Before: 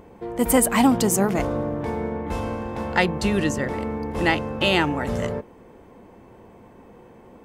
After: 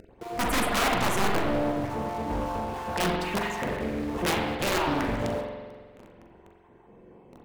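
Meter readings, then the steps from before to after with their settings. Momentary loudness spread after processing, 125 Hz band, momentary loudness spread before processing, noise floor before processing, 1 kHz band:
8 LU, −5.5 dB, 10 LU, −49 dBFS, −2.0 dB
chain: time-frequency cells dropped at random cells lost 31%
high-shelf EQ 3,400 Hz −10 dB
in parallel at −8.5 dB: log-companded quantiser 2 bits
on the sum: wrap-around overflow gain 14 dB
on a send: flutter between parallel walls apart 7.1 metres, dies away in 0.21 s
on the sum: spring reverb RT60 1.5 s, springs 44 ms, chirp 25 ms, DRR 0 dB
highs frequency-modulated by the lows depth 0.41 ms
level −7 dB

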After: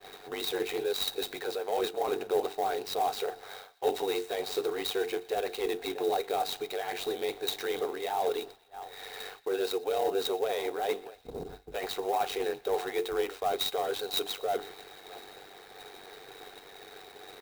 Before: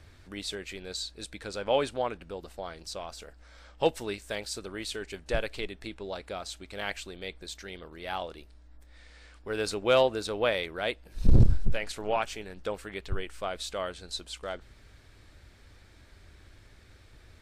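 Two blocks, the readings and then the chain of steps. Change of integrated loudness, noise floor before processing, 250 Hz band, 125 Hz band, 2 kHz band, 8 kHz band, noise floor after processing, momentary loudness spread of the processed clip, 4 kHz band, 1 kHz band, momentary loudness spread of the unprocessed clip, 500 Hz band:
0.0 dB, −56 dBFS, −2.0 dB, −23.0 dB, −3.0 dB, 0.0 dB, −52 dBFS, 17 LU, +2.0 dB, +4.0 dB, 16 LU, +1.5 dB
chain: low-shelf EQ 140 Hz −7.5 dB
mains-hum notches 50/100/150/200/250/300/350/400 Hz
slap from a distant wall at 110 metres, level −29 dB
reversed playback
downward compressor 20 to 1, threshold −39 dBFS, peak gain reduction 22 dB
reversed playback
mid-hump overdrive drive 24 dB, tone 5,500 Hz, clips at −25 dBFS
ring modulation 48 Hz
hollow resonant body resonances 430/740/3,800 Hz, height 18 dB, ringing for 35 ms
downward expander −38 dBFS
on a send: delay with a high-pass on its return 120 ms, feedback 67%, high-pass 1,500 Hz, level −22 dB
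on the sum: converter with an unsteady clock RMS 0.021 ms
level −3 dB

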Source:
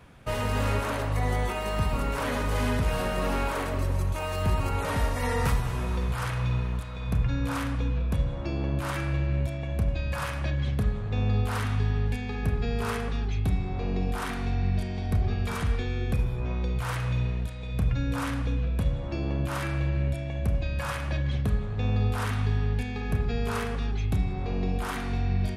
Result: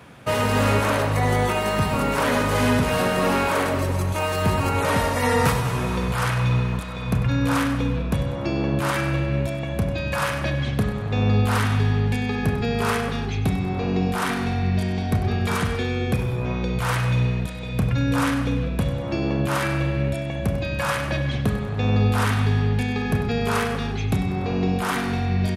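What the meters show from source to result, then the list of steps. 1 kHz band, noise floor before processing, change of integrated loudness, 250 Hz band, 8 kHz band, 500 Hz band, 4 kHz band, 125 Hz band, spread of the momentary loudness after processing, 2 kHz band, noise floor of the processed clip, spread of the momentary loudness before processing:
+8.5 dB, −32 dBFS, +6.0 dB, +9.0 dB, +8.5 dB, +8.5 dB, +8.5 dB, +5.0 dB, 5 LU, +9.0 dB, −28 dBFS, 3 LU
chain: high-pass filter 120 Hz 12 dB per octave
repeating echo 97 ms, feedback 43%, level −13 dB
level +8.5 dB

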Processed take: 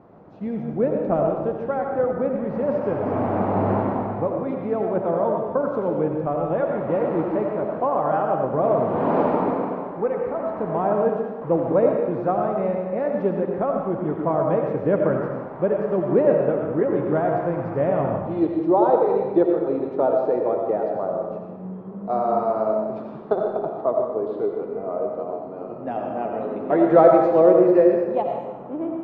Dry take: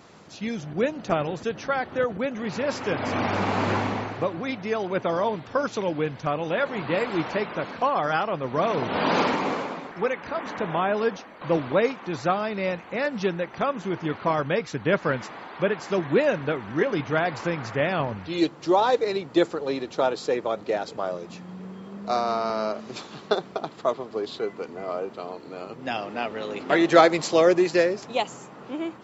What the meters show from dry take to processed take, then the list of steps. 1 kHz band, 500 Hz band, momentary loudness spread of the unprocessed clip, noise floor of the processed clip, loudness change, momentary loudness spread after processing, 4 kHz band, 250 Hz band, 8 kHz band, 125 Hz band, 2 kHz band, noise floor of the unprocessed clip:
+2.0 dB, +5.0 dB, 10 LU, −34 dBFS, +3.5 dB, 10 LU, below −20 dB, +4.5 dB, can't be measured, +3.5 dB, −9.5 dB, −44 dBFS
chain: Chebyshev low-pass filter 730 Hz, order 2
comb and all-pass reverb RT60 1.2 s, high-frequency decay 0.9×, pre-delay 45 ms, DRR 1 dB
level +2.5 dB

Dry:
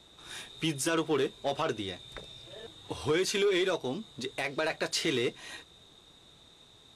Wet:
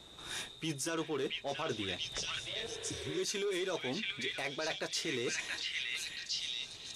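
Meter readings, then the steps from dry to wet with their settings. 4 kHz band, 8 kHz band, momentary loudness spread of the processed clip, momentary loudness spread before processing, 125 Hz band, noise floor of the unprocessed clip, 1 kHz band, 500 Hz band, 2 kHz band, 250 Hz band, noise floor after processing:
0.0 dB, −0.5 dB, 4 LU, 18 LU, −6.0 dB, −58 dBFS, −7.0 dB, −7.5 dB, −2.5 dB, −7.0 dB, −51 dBFS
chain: dynamic equaliser 5,900 Hz, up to +6 dB, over −51 dBFS, Q 2.4
echo through a band-pass that steps 681 ms, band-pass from 2,500 Hz, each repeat 0.7 octaves, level 0 dB
reversed playback
downward compressor 5 to 1, threshold −37 dBFS, peak gain reduction 12 dB
reversed playback
healed spectral selection 0:02.71–0:03.17, 380–4,100 Hz both
level +2.5 dB

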